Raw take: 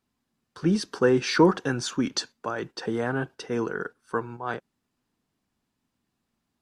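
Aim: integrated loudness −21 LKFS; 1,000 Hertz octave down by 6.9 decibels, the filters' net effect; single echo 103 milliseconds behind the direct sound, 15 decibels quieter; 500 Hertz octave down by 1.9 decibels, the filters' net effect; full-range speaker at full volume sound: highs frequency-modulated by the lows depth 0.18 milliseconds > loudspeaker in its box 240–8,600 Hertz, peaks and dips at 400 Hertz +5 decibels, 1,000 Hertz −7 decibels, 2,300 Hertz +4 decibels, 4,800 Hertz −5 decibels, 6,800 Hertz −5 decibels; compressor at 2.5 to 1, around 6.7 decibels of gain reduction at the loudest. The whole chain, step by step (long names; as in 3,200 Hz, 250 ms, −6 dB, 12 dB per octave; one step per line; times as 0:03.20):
parametric band 500 Hz −5 dB
parametric band 1,000 Hz −3 dB
downward compressor 2.5 to 1, threshold −25 dBFS
single-tap delay 103 ms −15 dB
highs frequency-modulated by the lows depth 0.18 ms
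loudspeaker in its box 240–8,600 Hz, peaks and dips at 400 Hz +5 dB, 1,000 Hz −7 dB, 2,300 Hz +4 dB, 4,800 Hz −5 dB, 6,800 Hz −5 dB
level +11.5 dB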